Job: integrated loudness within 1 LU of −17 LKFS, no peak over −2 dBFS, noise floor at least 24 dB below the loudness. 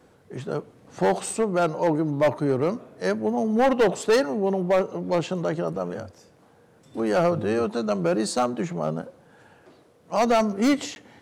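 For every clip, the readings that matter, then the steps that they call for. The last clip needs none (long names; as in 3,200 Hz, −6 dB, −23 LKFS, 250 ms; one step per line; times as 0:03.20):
share of clipped samples 1.4%; peaks flattened at −14.5 dBFS; number of dropouts 1; longest dropout 11 ms; integrated loudness −24.5 LKFS; sample peak −14.5 dBFS; target loudness −17.0 LKFS
→ clipped peaks rebuilt −14.5 dBFS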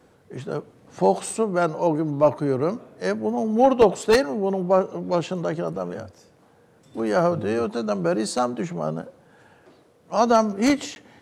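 share of clipped samples 0.0%; number of dropouts 1; longest dropout 11 ms
→ repair the gap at 0:10.95, 11 ms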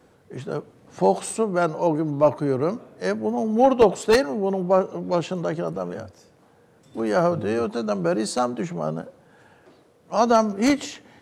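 number of dropouts 0; integrated loudness −23.0 LKFS; sample peak −5.5 dBFS; target loudness −17.0 LKFS
→ level +6 dB
brickwall limiter −2 dBFS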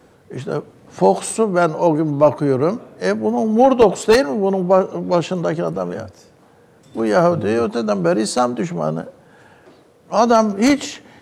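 integrated loudness −17.5 LKFS; sample peak −2.0 dBFS; background noise floor −51 dBFS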